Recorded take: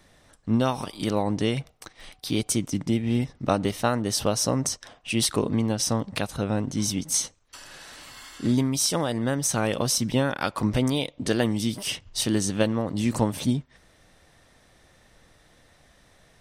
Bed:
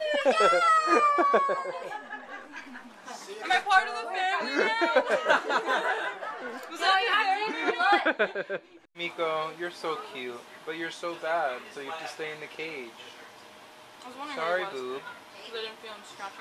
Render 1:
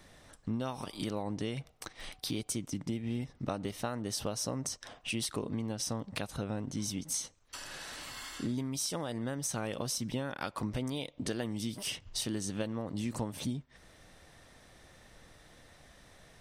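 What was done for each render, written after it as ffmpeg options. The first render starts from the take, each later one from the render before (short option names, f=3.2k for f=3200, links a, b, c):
-af "acompressor=threshold=-36dB:ratio=3"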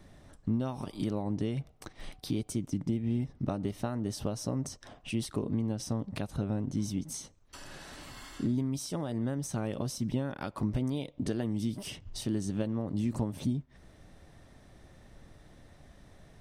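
-af "tiltshelf=f=700:g=6,bandreject=f=490:w=12"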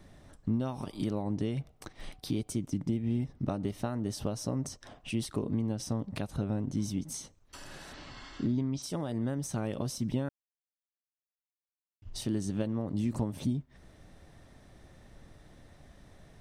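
-filter_complex "[0:a]asplit=3[a][b][c];[a]afade=t=out:st=7.92:d=0.02[d];[b]lowpass=f=5.9k:w=0.5412,lowpass=f=5.9k:w=1.3066,afade=t=in:st=7.92:d=0.02,afade=t=out:st=8.82:d=0.02[e];[c]afade=t=in:st=8.82:d=0.02[f];[d][e][f]amix=inputs=3:normalize=0,asplit=3[g][h][i];[g]atrim=end=10.29,asetpts=PTS-STARTPTS,afade=t=out:st=10.286:d=0.004:c=hsin[j];[h]atrim=start=10.29:end=12.02,asetpts=PTS-STARTPTS,volume=0[k];[i]atrim=start=12.02,asetpts=PTS-STARTPTS,afade=t=in:d=0.004:c=hsin[l];[j][k][l]concat=n=3:v=0:a=1"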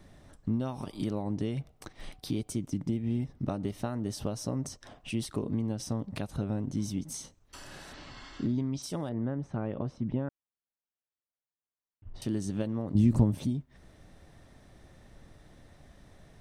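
-filter_complex "[0:a]asettb=1/sr,asplit=3[a][b][c];[a]atrim=end=7.164[d];[b]atrim=start=7.16:end=7.81,asetpts=PTS-STARTPTS,afade=t=in:d=0.004:c=qsin,afade=t=out:st=0.646:d=0.004:c=qsin,asplit=2[e][f];[f]adelay=31,volume=-9.5dB[g];[e][g]amix=inputs=2:normalize=0,atrim=end_sample=28665[h];[c]atrim=start=7.806[i];[d][h]acrossfade=d=0.004:c1=hsin:c2=qsin[j];[j][i]acrossfade=d=0.004:c1=qsin:c2=hsin,asettb=1/sr,asplit=3[k][l][m];[k]atrim=end=9.094[n];[l]atrim=start=9.09:end=12.22,asetpts=PTS-STARTPTS,afade=t=in:d=0.004:c=qsin,afade=t=out:st=3.126:d=0.004:c=qsin,lowpass=1.7k[o];[m]atrim=start=12.216[p];[n][o]acrossfade=d=0.004:c1=hsin:c2=qsin[q];[q][p]acrossfade=d=0.004:c1=qsin:c2=hsin,asettb=1/sr,asplit=3[r][s][t];[r]atrim=end=12.954[u];[s]atrim=start=12.95:end=13.35,asetpts=PTS-STARTPTS,afade=t=in:d=0.004:c=qsin,afade=t=out:st=0.396:d=0.004:c=qsin,lowshelf=f=320:g=11.5[v];[t]atrim=start=13.346[w];[u][v]acrossfade=d=0.004:c1=hsin:c2=qsin[x];[x][w]acrossfade=d=0.004:c1=qsin:c2=hsin"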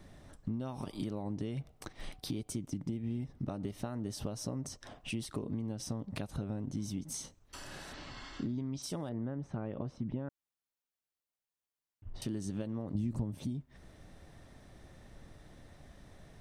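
-af "acompressor=threshold=-35dB:ratio=3"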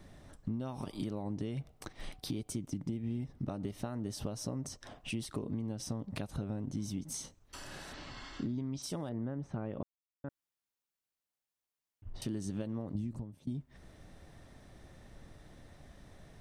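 -filter_complex "[0:a]asplit=4[a][b][c][d];[a]atrim=end=9.83,asetpts=PTS-STARTPTS,afade=t=out:st=9.826:d=0.004:c=hsin[e];[b]atrim=start=9.83:end=10.24,asetpts=PTS-STARTPTS,volume=0[f];[c]atrim=start=10.24:end=13.47,asetpts=PTS-STARTPTS,afade=t=in:d=0.004:c=hsin,afade=t=out:st=2.55:d=0.68:silence=0.1[g];[d]atrim=start=13.47,asetpts=PTS-STARTPTS,afade=t=in:d=0.004:c=hsin:silence=0.1[h];[e][f][g][h]concat=n=4:v=0:a=1"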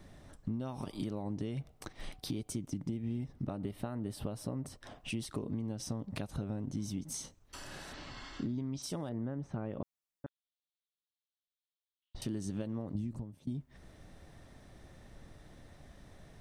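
-filter_complex "[0:a]asettb=1/sr,asplit=3[a][b][c];[a]atrim=end=3.474[d];[b]atrim=start=3.47:end=4.84,asetpts=PTS-STARTPTS,afade=t=in:d=0.004:c=qsin,afade=t=out:st=1.366:d=0.004:c=qsin,equalizer=f=6.1k:t=o:w=0.57:g=-12.5[e];[c]atrim=start=4.836[f];[d][e]acrossfade=d=0.004:c1=hsin:c2=qsin[g];[g][f]acrossfade=d=0.004:c1=qsin:c2=hsin,asettb=1/sr,asplit=3[h][i][j];[h]atrim=end=10.264[k];[i]atrim=start=10.26:end=12.15,asetpts=PTS-STARTPTS,afade=t=in:d=0.004:c=qsin,afade=t=out:st=1.886:d=0.004:c=qsin,asuperpass=centerf=3600:order=4:qfactor=2.8[l];[j]atrim=start=12.146[m];[k][l]acrossfade=d=0.004:c1=hsin:c2=qsin[n];[n][m]acrossfade=d=0.004:c1=qsin:c2=hsin"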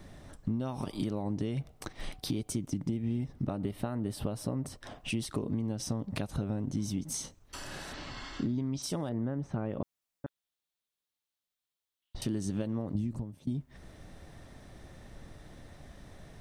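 -af "volume=4.5dB"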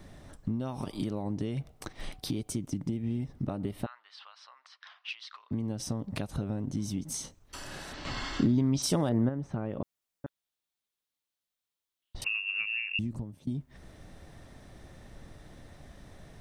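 -filter_complex "[0:a]asettb=1/sr,asplit=3[a][b][c];[a]atrim=end=3.864[d];[b]atrim=start=3.86:end=5.51,asetpts=PTS-STARTPTS,afade=t=in:d=0.004:c=qsin,afade=t=out:st=1.646:d=0.004:c=qsin,asuperpass=centerf=2300:order=8:qfactor=0.61[e];[c]atrim=start=5.506[f];[d][e]acrossfade=d=0.004:c1=hsin:c2=qsin[g];[g][f]acrossfade=d=0.004:c1=qsin:c2=hsin,asettb=1/sr,asplit=3[h][i][j];[h]atrim=end=12.244[k];[i]atrim=start=12.24:end=12.99,asetpts=PTS-STARTPTS,afade=t=in:d=0.004:c=qsin,afade=t=out:st=0.746:d=0.004:c=qsin,lowpass=f=2.5k:t=q:w=0.5098,lowpass=f=2.5k:t=q:w=0.6013,lowpass=f=2.5k:t=q:w=0.9,lowpass=f=2.5k:t=q:w=2.563,afreqshift=-2900[l];[j]atrim=start=12.986[m];[k][l]acrossfade=d=0.004:c1=hsin:c2=qsin[n];[n][m]acrossfade=d=0.004:c1=qsin:c2=hsin,asplit=3[o][p][q];[o]atrim=end=8.052[r];[p]atrim=start=8.048:end=9.292,asetpts=PTS-STARTPTS,volume=7dB[s];[q]atrim=start=9.288[t];[r][s]acrossfade=d=0.004:c1=hsin:c2=hsin[u];[u][t]acrossfade=d=0.004:c1=hsin:c2=hsin"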